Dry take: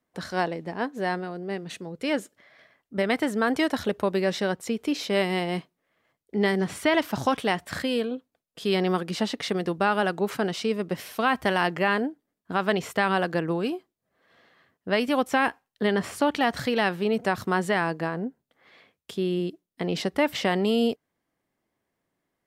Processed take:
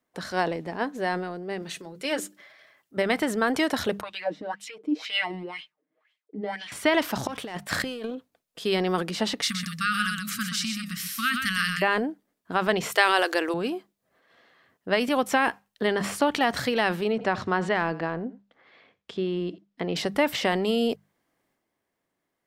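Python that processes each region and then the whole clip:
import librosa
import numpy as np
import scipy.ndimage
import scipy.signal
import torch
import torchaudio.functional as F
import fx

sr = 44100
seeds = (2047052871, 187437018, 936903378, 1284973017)

y = fx.chain(x, sr, fx.tilt_eq(slope=1.5),
    fx.hum_notches(base_hz=60, count=6),
    fx.notch_comb(f0_hz=240.0), at=(1.62, 2.97))
y = fx.chain(y, sr, fx.comb(ms=6.5, depth=0.9),
    fx.wah_lfo(hz=2.0, low_hz=230.0, high_hz=3200.0, q=4.0),
    fx.high_shelf(hz=2500.0, db=10.0), at=(4.01, 6.72))
y = fx.chain(y, sr, fx.leveller(passes=1),
    fx.transient(attack_db=-6, sustain_db=-11),
    fx.over_compress(threshold_db=-33.0, ratio=-1.0), at=(7.27, 8.15))
y = fx.chain(y, sr, fx.brickwall_bandstop(low_hz=260.0, high_hz=1100.0),
    fx.bass_treble(bass_db=-1, treble_db=10),
    fx.echo_single(ms=125, db=-7.0), at=(9.42, 11.82))
y = fx.chain(y, sr, fx.brickwall_highpass(low_hz=300.0),
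    fx.high_shelf(hz=2200.0, db=11.5), at=(12.92, 13.54))
y = fx.chain(y, sr, fx.air_absorb(metres=130.0),
    fx.echo_single(ms=85, db=-22.5), at=(17.12, 19.96))
y = fx.low_shelf(y, sr, hz=260.0, db=-4.5)
y = fx.hum_notches(y, sr, base_hz=50, count=4)
y = fx.transient(y, sr, attack_db=2, sustain_db=6)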